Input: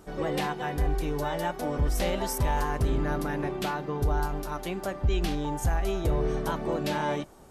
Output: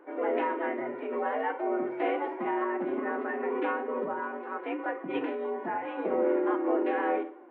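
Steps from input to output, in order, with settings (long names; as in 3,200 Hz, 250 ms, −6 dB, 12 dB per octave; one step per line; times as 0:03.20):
single-sideband voice off tune +57 Hz 180–2,300 Hz
feedback delay network reverb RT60 0.49 s, low-frequency decay 1×, high-frequency decay 0.95×, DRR 5.5 dB
phase-vocoder pitch shift with formants kept +3 semitones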